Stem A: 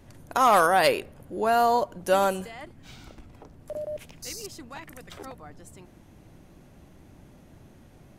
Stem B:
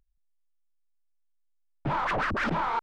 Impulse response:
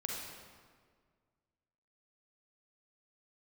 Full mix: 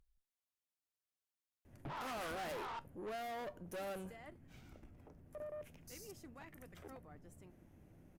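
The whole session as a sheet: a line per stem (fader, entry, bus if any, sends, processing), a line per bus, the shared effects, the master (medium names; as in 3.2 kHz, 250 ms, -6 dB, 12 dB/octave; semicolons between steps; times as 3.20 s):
-6.5 dB, 1.65 s, no send, graphic EQ 1/4/8 kHz -5/-10/-5 dB
+2.0 dB, 0.00 s, no send, peak limiter -32 dBFS, peak gain reduction 11 dB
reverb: none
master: valve stage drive 39 dB, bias 0.35; feedback comb 85 Hz, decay 0.2 s, harmonics all, mix 40%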